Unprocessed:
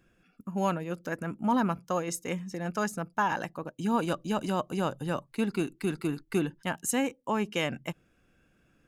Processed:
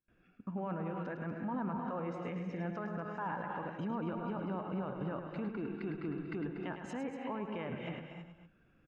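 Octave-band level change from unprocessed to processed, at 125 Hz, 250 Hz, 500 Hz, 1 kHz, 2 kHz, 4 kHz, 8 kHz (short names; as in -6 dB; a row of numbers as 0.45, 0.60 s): -5.5 dB, -7.5 dB, -8.0 dB, -9.5 dB, -10.5 dB, -16.5 dB, under -25 dB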